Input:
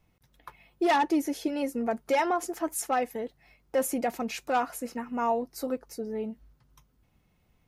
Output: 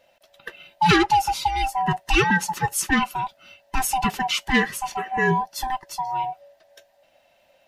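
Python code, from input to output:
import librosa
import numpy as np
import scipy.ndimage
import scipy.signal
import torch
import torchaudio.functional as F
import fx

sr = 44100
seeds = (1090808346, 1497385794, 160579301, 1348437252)

y = fx.band_swap(x, sr, width_hz=500)
y = fx.peak_eq(y, sr, hz=3200.0, db=9.5, octaves=2.2)
y = y * librosa.db_to_amplitude(5.0)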